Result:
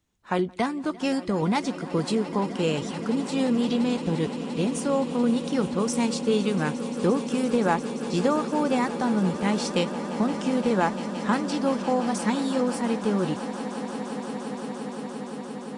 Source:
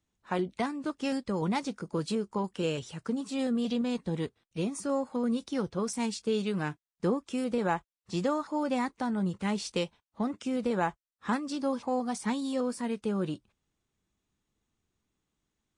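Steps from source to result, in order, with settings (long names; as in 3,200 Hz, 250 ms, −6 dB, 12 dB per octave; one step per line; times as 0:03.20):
echo that builds up and dies away 173 ms, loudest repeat 8, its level −17 dB
level +5.5 dB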